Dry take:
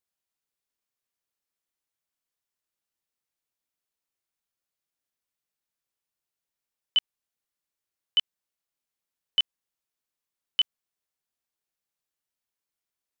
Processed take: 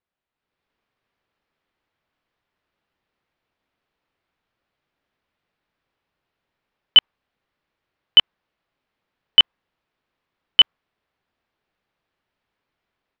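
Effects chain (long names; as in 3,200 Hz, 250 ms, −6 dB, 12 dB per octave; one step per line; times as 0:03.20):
dynamic equaliser 1,100 Hz, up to +5 dB, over −40 dBFS, Q 0.94
automatic gain control gain up to 10 dB
high-frequency loss of the air 350 metres
level +8.5 dB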